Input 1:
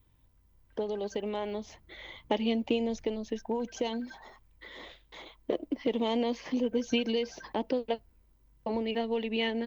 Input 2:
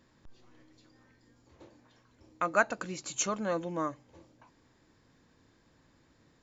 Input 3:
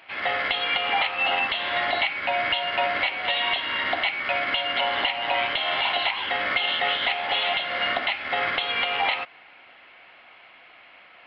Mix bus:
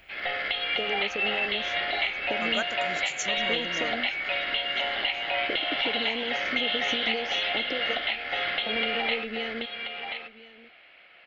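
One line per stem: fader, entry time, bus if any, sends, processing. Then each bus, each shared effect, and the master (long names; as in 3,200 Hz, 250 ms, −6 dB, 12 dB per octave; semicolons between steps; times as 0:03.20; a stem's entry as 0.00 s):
+2.0 dB, 0.00 s, muted 0:02.65–0:03.37, no send, echo send −18 dB, downward compressor, threshold −29 dBFS, peak gain reduction 7 dB
−2.0 dB, 0.00 s, no send, no echo send, no processing
−2.5 dB, 0.00 s, no send, echo send −6.5 dB, no processing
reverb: not used
echo: single-tap delay 1,032 ms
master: graphic EQ with 15 bands 100 Hz −7 dB, 250 Hz −5 dB, 1,000 Hz −12 dB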